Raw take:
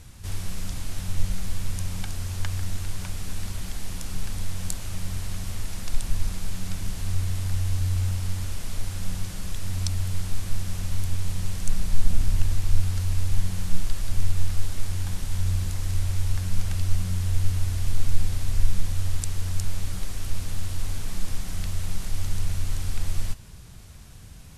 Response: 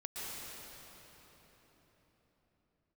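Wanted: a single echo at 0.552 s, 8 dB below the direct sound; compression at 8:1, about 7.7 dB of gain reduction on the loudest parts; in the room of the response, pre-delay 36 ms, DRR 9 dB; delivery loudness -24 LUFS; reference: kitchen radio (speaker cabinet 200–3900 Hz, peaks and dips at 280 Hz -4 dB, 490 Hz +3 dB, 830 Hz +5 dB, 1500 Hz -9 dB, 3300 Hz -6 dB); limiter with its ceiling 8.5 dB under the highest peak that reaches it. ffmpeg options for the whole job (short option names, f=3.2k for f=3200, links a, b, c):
-filter_complex "[0:a]acompressor=threshold=-16dB:ratio=8,alimiter=limit=-17.5dB:level=0:latency=1,aecho=1:1:552:0.398,asplit=2[a][b];[1:a]atrim=start_sample=2205,adelay=36[c];[b][c]afir=irnorm=-1:irlink=0,volume=-10.5dB[d];[a][d]amix=inputs=2:normalize=0,highpass=200,equalizer=f=280:t=q:w=4:g=-4,equalizer=f=490:t=q:w=4:g=3,equalizer=f=830:t=q:w=4:g=5,equalizer=f=1.5k:t=q:w=4:g=-9,equalizer=f=3.3k:t=q:w=4:g=-6,lowpass=f=3.9k:w=0.5412,lowpass=f=3.9k:w=1.3066,volume=19.5dB"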